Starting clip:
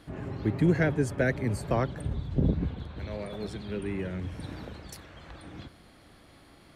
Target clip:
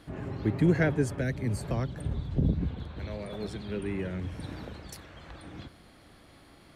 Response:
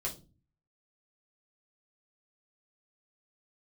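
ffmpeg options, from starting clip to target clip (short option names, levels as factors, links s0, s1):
-filter_complex "[0:a]asettb=1/sr,asplit=3[s0][s1][s2];[s0]atrim=end=1.174[s3];[s1]atrim=start=1.17:end=3.29,asetpts=PTS-STARTPTS,afade=t=in:d=0.004:c=qsin,afade=t=out:st=2.116:d=0.004:c=qsin,acrossover=split=260|3000[s4][s5][s6];[s5]acompressor=threshold=0.0126:ratio=2.5[s7];[s4][s7][s6]amix=inputs=3:normalize=0[s8];[s2]atrim=start=3.286[s9];[s3][s8]acrossfade=d=0.004:c1=hsin:c2=qsin[s10];[s10][s9]acrossfade=d=0.004:c1=qsin:c2=hsin"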